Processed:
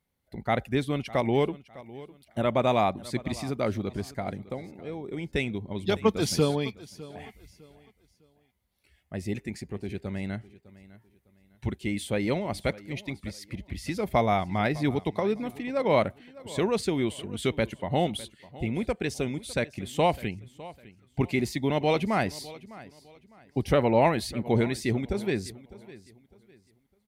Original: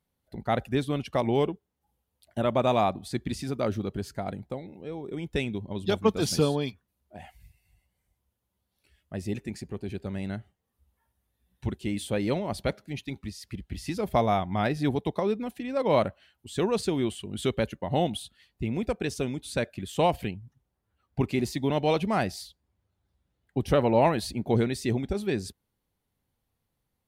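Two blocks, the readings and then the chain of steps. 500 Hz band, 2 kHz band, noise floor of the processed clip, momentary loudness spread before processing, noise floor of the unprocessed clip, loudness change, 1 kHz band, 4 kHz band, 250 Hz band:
0.0 dB, +3.0 dB, −68 dBFS, 13 LU, −81 dBFS, 0.0 dB, 0.0 dB, +0.5 dB, 0.0 dB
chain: parametric band 2,100 Hz +7 dB 0.26 octaves
repeating echo 605 ms, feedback 30%, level −19 dB

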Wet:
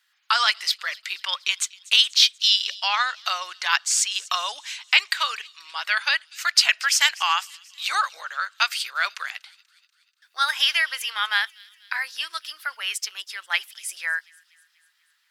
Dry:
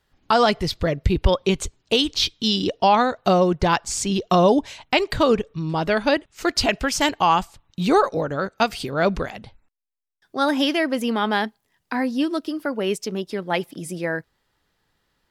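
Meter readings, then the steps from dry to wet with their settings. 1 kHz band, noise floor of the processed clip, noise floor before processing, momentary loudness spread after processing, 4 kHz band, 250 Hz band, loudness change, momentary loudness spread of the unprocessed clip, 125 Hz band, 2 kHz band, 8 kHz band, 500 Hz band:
−5.5 dB, −68 dBFS, −72 dBFS, 13 LU, +5.5 dB, below −40 dB, −0.5 dB, 9 LU, below −40 dB, +4.5 dB, +5.5 dB, −25.5 dB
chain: high-pass filter 1,400 Hz 24 dB per octave
on a send: delay with a high-pass on its return 242 ms, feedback 56%, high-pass 3,100 Hz, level −20 dB
on the sum: level +5.5 dB

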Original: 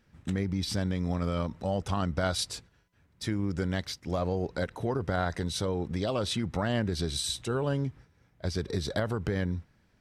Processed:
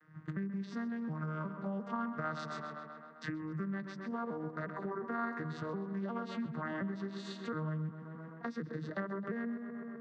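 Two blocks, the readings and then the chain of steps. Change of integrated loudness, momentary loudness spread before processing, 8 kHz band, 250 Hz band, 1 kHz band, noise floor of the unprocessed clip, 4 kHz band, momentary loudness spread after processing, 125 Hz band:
−8.5 dB, 5 LU, below −20 dB, −5.5 dB, −4.5 dB, −67 dBFS, −19.5 dB, 5 LU, −10.5 dB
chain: vocoder with an arpeggio as carrier major triad, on D#3, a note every 358 ms
high-shelf EQ 6,300 Hz −10.5 dB
on a send: tape delay 130 ms, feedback 71%, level −9.5 dB, low-pass 3,700 Hz
on the sum: downward compressor 3 to 1, threshold −46 dBFS, peak gain reduction 15.5 dB
flat-topped bell 1,400 Hz +12.5 dB 1.2 octaves
level +5 dB

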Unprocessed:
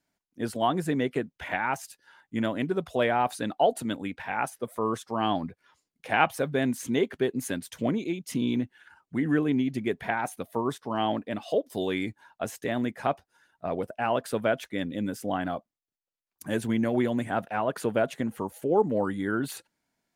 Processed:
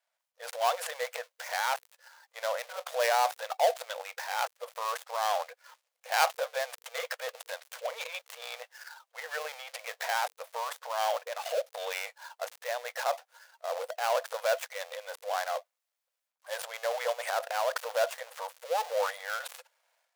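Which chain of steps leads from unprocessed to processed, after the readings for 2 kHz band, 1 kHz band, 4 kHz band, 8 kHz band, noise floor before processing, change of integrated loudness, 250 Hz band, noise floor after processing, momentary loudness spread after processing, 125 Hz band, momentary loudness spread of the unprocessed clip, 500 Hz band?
−1.5 dB, −1.5 dB, +1.5 dB, +2.0 dB, below −85 dBFS, −4.0 dB, below −40 dB, below −85 dBFS, 13 LU, below −40 dB, 9 LU, −4.0 dB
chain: gap after every zero crossing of 0.14 ms
transient designer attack −4 dB, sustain +10 dB
linear-phase brick-wall high-pass 470 Hz

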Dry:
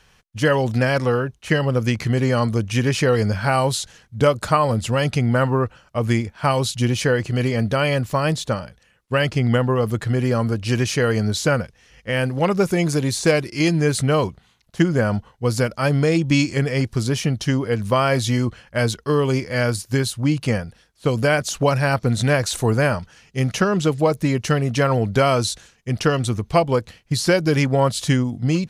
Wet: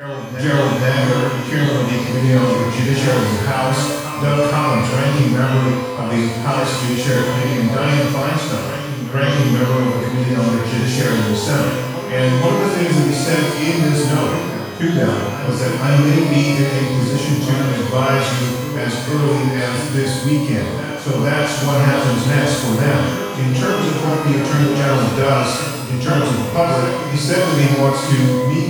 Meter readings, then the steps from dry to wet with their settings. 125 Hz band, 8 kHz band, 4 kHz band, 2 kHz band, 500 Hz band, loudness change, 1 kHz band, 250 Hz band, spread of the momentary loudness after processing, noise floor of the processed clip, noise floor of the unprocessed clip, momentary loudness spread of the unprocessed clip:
+4.5 dB, +3.5 dB, +4.5 dB, +3.0 dB, +2.5 dB, +4.0 dB, +3.5 dB, +5.0 dB, 5 LU, −24 dBFS, −58 dBFS, 6 LU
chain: backwards echo 483 ms −9.5 dB
reverb with rising layers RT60 1.1 s, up +12 semitones, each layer −8 dB, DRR −9 dB
level −8 dB

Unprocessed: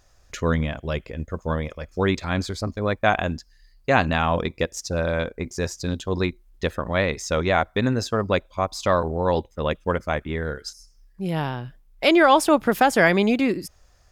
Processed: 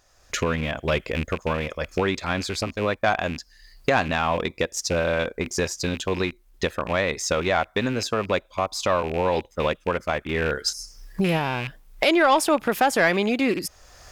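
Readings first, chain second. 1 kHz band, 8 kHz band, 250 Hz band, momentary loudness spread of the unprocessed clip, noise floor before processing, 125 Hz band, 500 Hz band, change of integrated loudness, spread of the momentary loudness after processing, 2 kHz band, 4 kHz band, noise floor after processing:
−1.0 dB, +4.0 dB, −2.5 dB, 13 LU, −57 dBFS, −3.5 dB, −0.5 dB, −1.0 dB, 8 LU, 0.0 dB, +2.0 dB, −58 dBFS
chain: loose part that buzzes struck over −32 dBFS, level −27 dBFS
camcorder AGC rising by 23 dB per second
low-shelf EQ 230 Hz −9 dB
soft clipping −8.5 dBFS, distortion −21 dB

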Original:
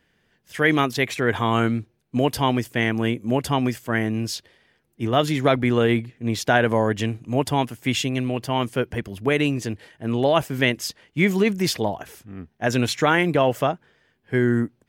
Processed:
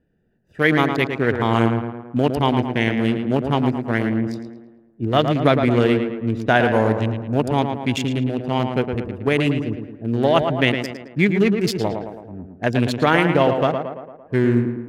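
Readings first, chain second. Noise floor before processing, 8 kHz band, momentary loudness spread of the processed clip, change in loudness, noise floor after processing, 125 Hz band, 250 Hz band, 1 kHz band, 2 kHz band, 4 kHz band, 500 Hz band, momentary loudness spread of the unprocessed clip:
−67 dBFS, −7.5 dB, 10 LU, +2.5 dB, −51 dBFS, +3.5 dB, +3.5 dB, +2.0 dB, +1.0 dB, −0.5 dB, +3.0 dB, 10 LU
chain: adaptive Wiener filter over 41 samples
tape delay 111 ms, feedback 59%, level −5 dB, low-pass 2,300 Hz
level +2.5 dB

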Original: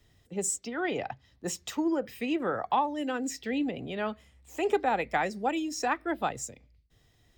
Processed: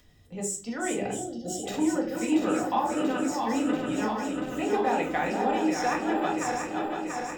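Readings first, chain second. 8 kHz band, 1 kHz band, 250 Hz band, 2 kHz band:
+1.0 dB, +3.0 dB, +5.5 dB, +1.5 dB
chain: feedback delay that plays each chunk backwards 343 ms, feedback 82%, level −5 dB
gain on a spectral selection 0:01.13–0:01.65, 830–2,800 Hz −24 dB
noise gate with hold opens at −33 dBFS
upward compression, threshold −39 dBFS
rectangular room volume 290 cubic metres, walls furnished, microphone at 1.9 metres
level −4 dB

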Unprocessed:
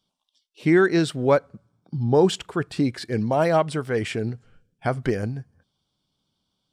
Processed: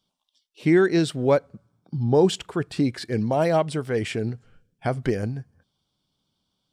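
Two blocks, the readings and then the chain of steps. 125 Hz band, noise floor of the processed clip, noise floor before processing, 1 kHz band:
0.0 dB, −77 dBFS, −78 dBFS, −2.5 dB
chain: dynamic equaliser 1,300 Hz, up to −5 dB, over −36 dBFS, Q 1.3

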